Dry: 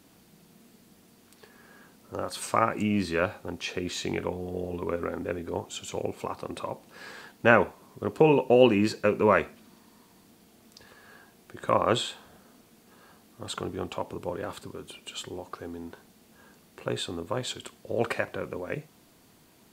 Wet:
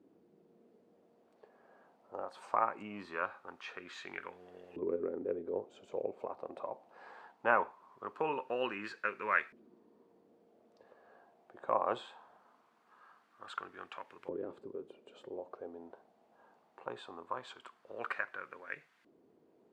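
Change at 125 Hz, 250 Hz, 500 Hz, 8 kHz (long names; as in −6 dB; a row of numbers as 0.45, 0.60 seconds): −24.5 dB, −17.5 dB, −12.5 dB, below −20 dB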